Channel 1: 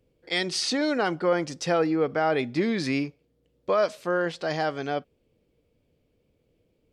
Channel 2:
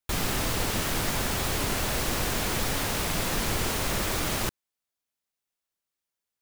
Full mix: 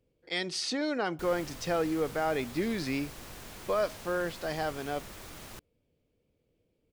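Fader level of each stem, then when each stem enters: -6.0, -18.0 dB; 0.00, 1.10 s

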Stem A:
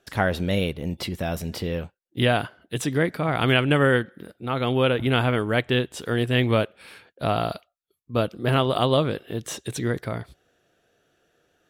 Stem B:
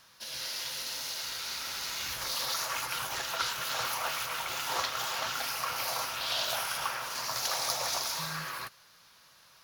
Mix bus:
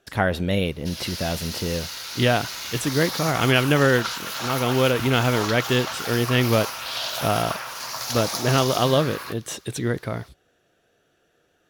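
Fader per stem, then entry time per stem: +1.0, +3.0 dB; 0.00, 0.65 s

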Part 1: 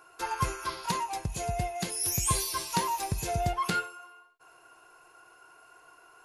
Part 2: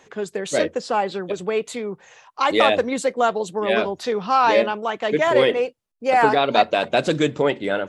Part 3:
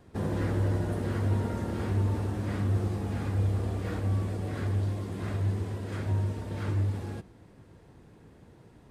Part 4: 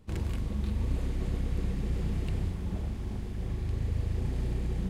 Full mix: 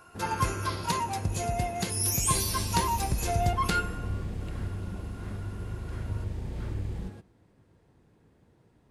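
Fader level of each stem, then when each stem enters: +1.5 dB, off, -8.5 dB, -5.0 dB; 0.00 s, off, 0.00 s, 2.20 s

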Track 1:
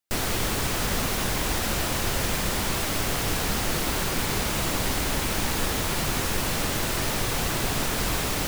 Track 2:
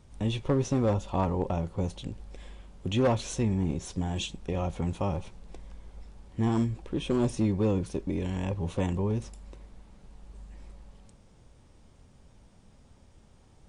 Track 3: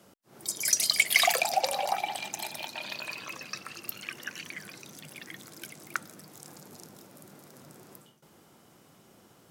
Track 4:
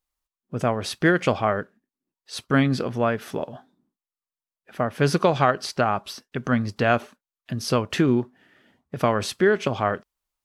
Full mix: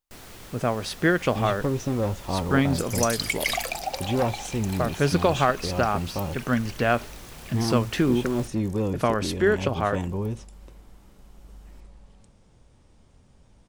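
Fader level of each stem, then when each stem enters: -18.0, 0.0, -4.0, -2.0 dB; 0.00, 1.15, 2.30, 0.00 s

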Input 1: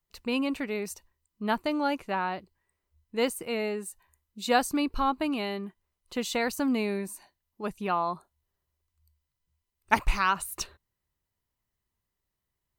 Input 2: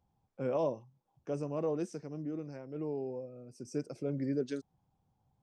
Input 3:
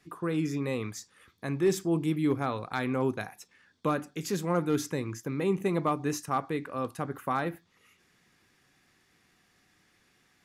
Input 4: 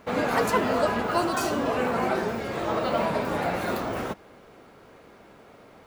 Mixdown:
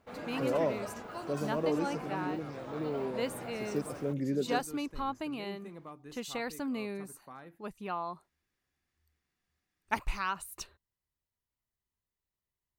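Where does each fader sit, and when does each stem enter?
-8.5, +1.5, -19.5, -17.5 dB; 0.00, 0.00, 0.00, 0.00 s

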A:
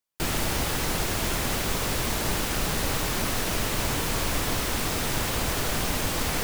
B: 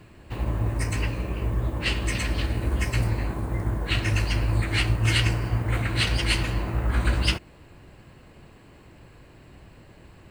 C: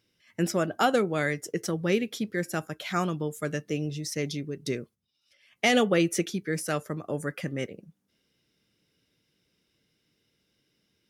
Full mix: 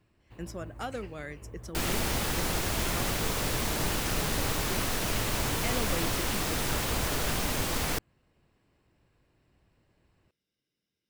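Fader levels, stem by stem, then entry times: -3.0, -19.5, -13.5 dB; 1.55, 0.00, 0.00 s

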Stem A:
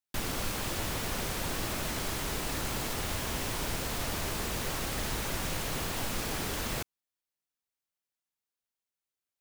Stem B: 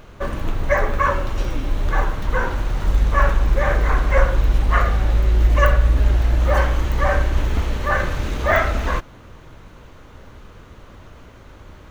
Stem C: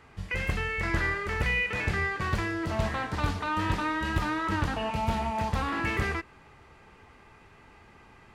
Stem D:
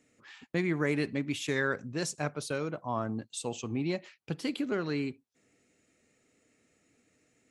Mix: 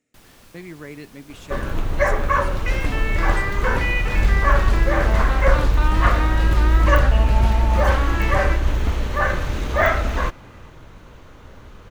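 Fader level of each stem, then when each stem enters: -16.0, -0.5, +3.0, -7.5 dB; 0.00, 1.30, 2.35, 0.00 s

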